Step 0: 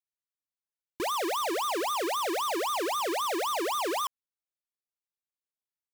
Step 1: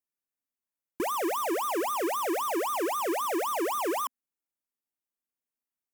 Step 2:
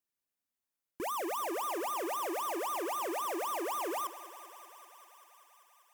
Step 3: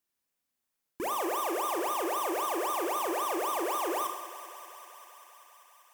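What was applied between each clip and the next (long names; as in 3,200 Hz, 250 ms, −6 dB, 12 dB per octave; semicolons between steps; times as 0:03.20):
graphic EQ with 15 bands 100 Hz −8 dB, 250 Hz +9 dB, 4,000 Hz −12 dB, 16,000 Hz +4 dB
brickwall limiter −34.5 dBFS, peak gain reduction 11.5 dB; feedback echo with a high-pass in the loop 195 ms, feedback 82%, high-pass 350 Hz, level −14.5 dB; level +1 dB
in parallel at −3.5 dB: soft clipping −38 dBFS, distortion −15 dB; on the sum: four-comb reverb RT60 0.71 s, combs from 29 ms, DRR 5 dB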